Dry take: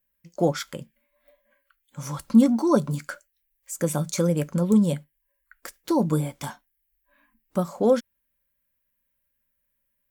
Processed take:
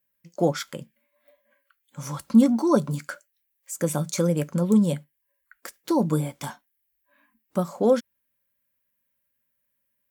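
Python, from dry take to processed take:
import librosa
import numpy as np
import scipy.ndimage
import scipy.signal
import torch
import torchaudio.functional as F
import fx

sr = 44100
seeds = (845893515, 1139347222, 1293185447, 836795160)

y = scipy.signal.sosfilt(scipy.signal.butter(2, 94.0, 'highpass', fs=sr, output='sos'), x)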